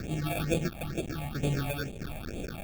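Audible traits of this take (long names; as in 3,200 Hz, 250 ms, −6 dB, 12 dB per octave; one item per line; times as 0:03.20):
a quantiser's noise floor 6 bits, dither triangular
sample-and-hold tremolo
aliases and images of a low sample rate 1,000 Hz, jitter 0%
phaser sweep stages 6, 2.2 Hz, lowest notch 370–1,500 Hz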